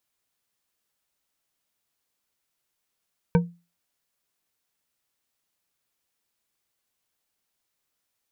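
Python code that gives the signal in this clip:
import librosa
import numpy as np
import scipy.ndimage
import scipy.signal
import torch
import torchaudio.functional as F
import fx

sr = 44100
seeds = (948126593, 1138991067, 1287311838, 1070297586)

y = fx.strike_glass(sr, length_s=0.89, level_db=-12.5, body='bar', hz=172.0, decay_s=0.3, tilt_db=5, modes=5)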